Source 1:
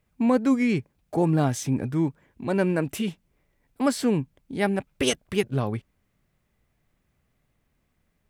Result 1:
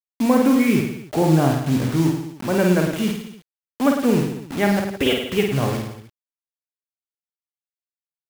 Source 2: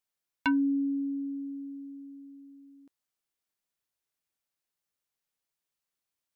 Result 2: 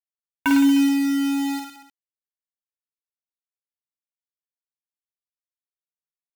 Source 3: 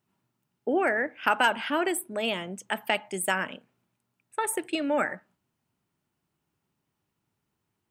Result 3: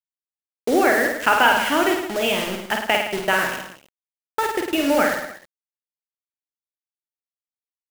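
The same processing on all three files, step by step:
downsampling to 8,000 Hz
bit reduction 6 bits
reverse bouncing-ball delay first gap 50 ms, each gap 1.1×, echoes 5
loudness normalisation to −20 LKFS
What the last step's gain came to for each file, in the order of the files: +3.5, +5.5, +6.0 decibels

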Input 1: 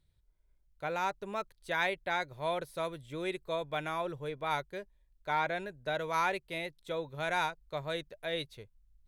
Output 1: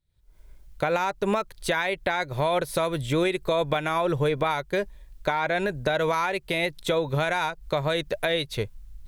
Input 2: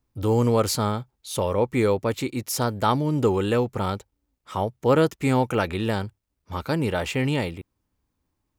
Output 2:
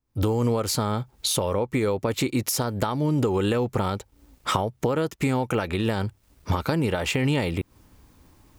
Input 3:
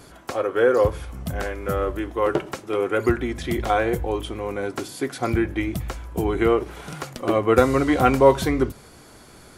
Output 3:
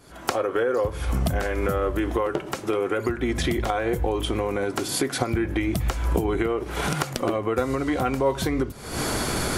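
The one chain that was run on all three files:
camcorder AGC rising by 78 dB per second
level −8.5 dB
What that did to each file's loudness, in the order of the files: +9.0, −1.0, −3.0 LU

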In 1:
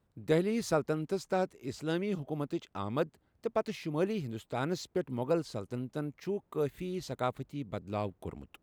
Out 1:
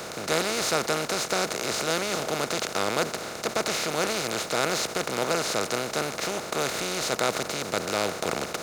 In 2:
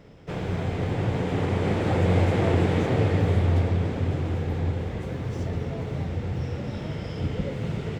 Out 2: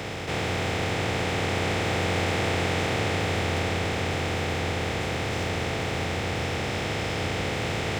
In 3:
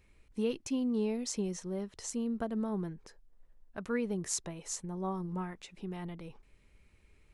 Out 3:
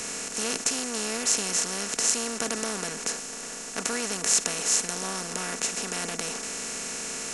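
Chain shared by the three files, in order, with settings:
compressor on every frequency bin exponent 0.2
tilt shelving filter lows −8.5 dB, about 1,100 Hz
multiband upward and downward expander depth 40%
loudness normalisation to −27 LKFS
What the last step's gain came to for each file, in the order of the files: +0.5, −3.5, −0.5 decibels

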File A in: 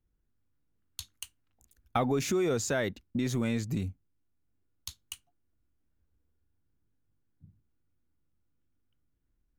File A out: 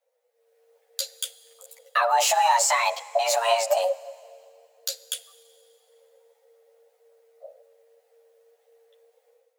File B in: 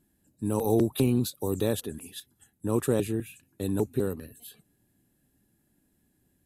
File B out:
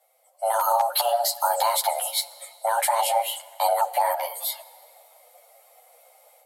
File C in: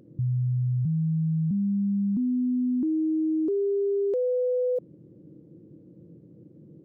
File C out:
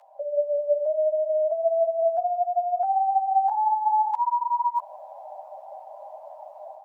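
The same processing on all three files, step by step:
tilt shelving filter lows −3 dB, about 640 Hz
automatic gain control gain up to 11 dB
brickwall limiter −14.5 dBFS
downward compressor, threshold −22 dBFS
frequency shifter +460 Hz
four-comb reverb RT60 2.3 s, combs from 32 ms, DRR 18.5 dB
string-ensemble chorus
loudness normalisation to −24 LKFS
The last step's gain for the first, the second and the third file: +7.5, +8.0, +3.5 decibels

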